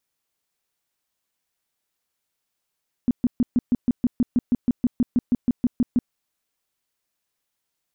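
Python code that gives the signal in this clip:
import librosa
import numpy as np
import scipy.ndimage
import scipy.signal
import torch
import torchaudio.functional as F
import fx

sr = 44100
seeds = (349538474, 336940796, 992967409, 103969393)

y = fx.tone_burst(sr, hz=244.0, cycles=7, every_s=0.16, bursts=19, level_db=-14.5)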